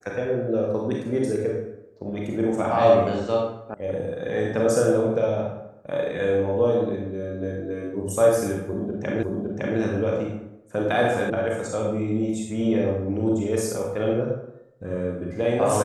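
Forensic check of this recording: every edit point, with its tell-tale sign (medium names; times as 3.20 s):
3.74 s: sound stops dead
9.23 s: repeat of the last 0.56 s
11.30 s: sound stops dead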